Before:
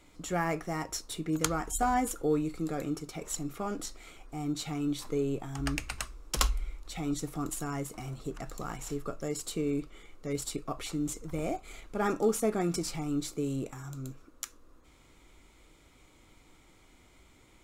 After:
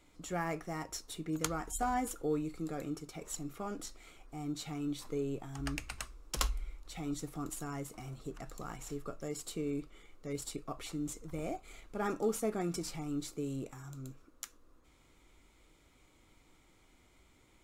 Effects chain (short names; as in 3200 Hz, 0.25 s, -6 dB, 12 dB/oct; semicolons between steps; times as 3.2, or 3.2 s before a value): gain -5.5 dB; AAC 96 kbps 48000 Hz